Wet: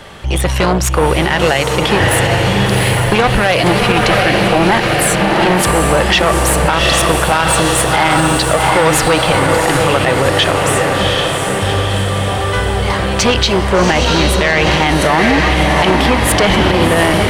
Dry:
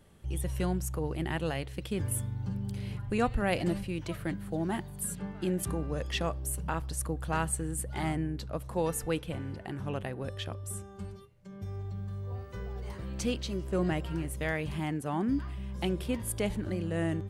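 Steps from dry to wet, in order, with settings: saturation -30.5 dBFS, distortion -10 dB; three-band isolator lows -13 dB, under 550 Hz, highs -15 dB, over 5.9 kHz; on a send: echo that smears into a reverb 746 ms, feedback 63%, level -4 dB; on the sum: loudness maximiser +34 dB; trim -1 dB

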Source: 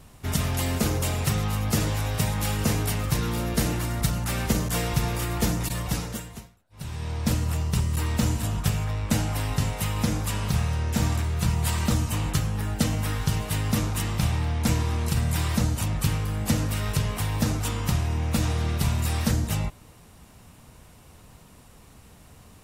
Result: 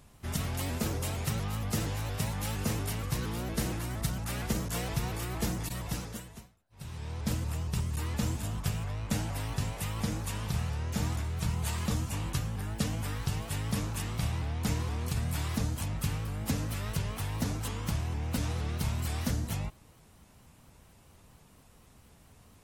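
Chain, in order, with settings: vibrato with a chosen wave saw up 4.3 Hz, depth 160 cents; trim -7.5 dB

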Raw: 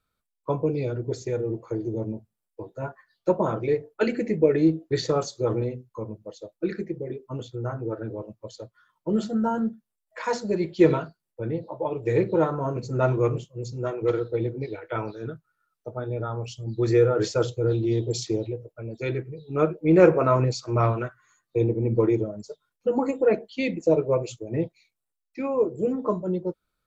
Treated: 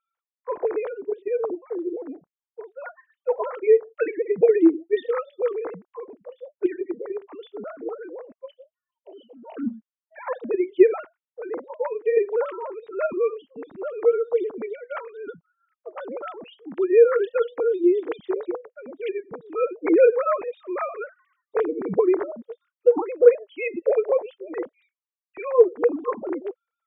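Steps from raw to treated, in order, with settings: formants replaced by sine waves; 8.55–9.57 s: two resonant band-passes 1.4 kHz, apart 2.2 oct; trim +1.5 dB

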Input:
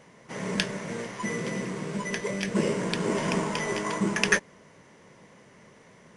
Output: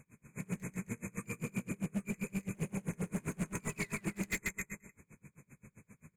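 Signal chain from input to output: painted sound fall, 3.63–3.92 s, 1.4–3.2 kHz -24 dBFS; formant shift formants +3 st; bass shelf 310 Hz +7 dB; in parallel at +1 dB: compression, threshold -28 dBFS, peak gain reduction 11.5 dB; on the sum: brick-wall FIR band-stop 2.6–6.2 kHz; amplifier tone stack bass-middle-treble 6-0-2; on a send: bouncing-ball echo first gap 140 ms, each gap 0.9×, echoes 5; on the sum: hard clipper -36.5 dBFS, distortion -12 dB; logarithmic tremolo 7.6 Hz, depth 31 dB; trim +8 dB

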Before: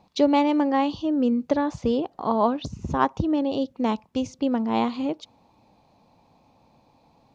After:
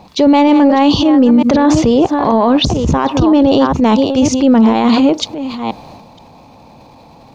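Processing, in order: chunks repeated in reverse 476 ms, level -12.5 dB; transient shaper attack -8 dB, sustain +7 dB; loudness maximiser +20.5 dB; trim -2 dB

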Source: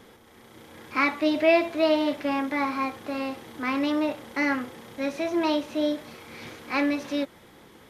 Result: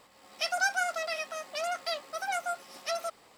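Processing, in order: speed mistake 33 rpm record played at 78 rpm; trim -7 dB

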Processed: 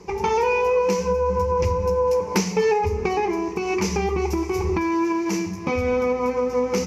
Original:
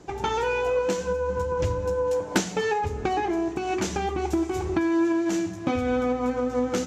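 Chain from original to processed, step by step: rippled EQ curve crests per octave 0.83, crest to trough 13 dB; in parallel at -2 dB: peak limiter -18 dBFS, peak gain reduction 9.5 dB; on the sum: trim -2.5 dB

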